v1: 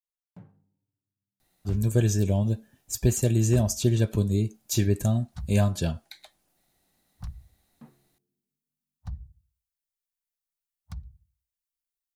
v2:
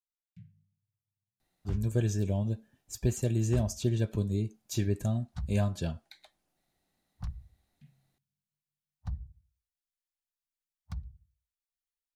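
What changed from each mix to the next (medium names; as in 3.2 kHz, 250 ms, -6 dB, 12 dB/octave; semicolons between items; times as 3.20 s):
speech -6.0 dB; first sound: add inverse Chebyshev band-stop 320–1100 Hz, stop band 50 dB; master: add treble shelf 7.3 kHz -8.5 dB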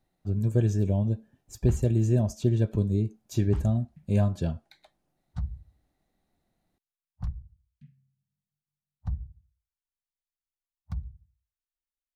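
speech: entry -1.40 s; master: add tilt shelf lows +5 dB, about 1.3 kHz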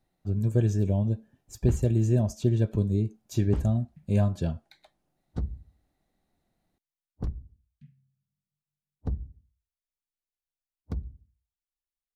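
second sound: remove Chebyshev band-stop 150–870 Hz, order 2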